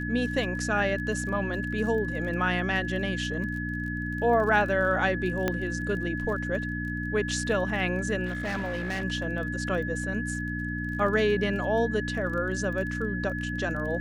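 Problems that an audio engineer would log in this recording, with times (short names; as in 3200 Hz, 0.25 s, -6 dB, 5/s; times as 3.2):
crackle 24/s -36 dBFS
hum 60 Hz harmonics 5 -33 dBFS
tone 1700 Hz -34 dBFS
5.48 pop -12 dBFS
8.25–9.04 clipped -27 dBFS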